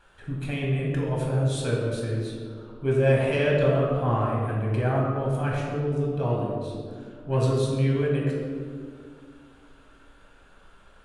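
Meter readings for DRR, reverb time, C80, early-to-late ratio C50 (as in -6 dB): -3.5 dB, 2.1 s, 2.0 dB, 0.5 dB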